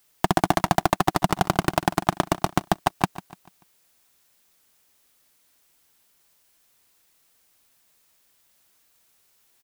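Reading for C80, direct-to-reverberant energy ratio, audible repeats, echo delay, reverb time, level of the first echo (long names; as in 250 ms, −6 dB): no reverb audible, no reverb audible, 3, 146 ms, no reverb audible, −16.0 dB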